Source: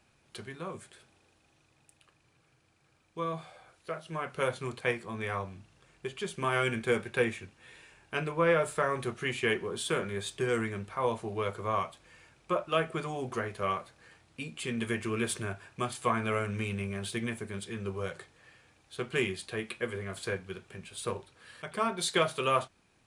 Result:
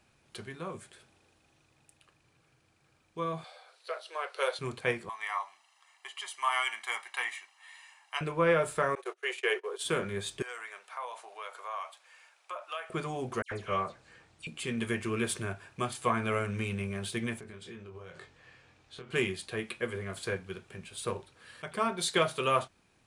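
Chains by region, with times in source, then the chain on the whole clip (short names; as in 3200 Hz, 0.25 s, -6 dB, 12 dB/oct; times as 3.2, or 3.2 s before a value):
3.44–4.59 steep high-pass 420 Hz 48 dB/oct + bell 4200 Hz +10.5 dB 0.54 oct + notch 6800 Hz, Q 17
5.09–8.21 HPF 720 Hz 24 dB/oct + comb 1 ms, depth 74%
8.95–9.85 gate -38 dBFS, range -24 dB + steep high-pass 380 Hz 72 dB/oct
10.42–12.9 compressor 2.5:1, threshold -34 dBFS + HPF 670 Hz 24 dB/oct
13.42–14.47 steep low-pass 9300 Hz + dispersion lows, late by 93 ms, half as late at 2600 Hz
17.4–19.11 LPF 6200 Hz + compressor 8:1, threshold -43 dBFS + doubler 23 ms -5.5 dB
whole clip: dry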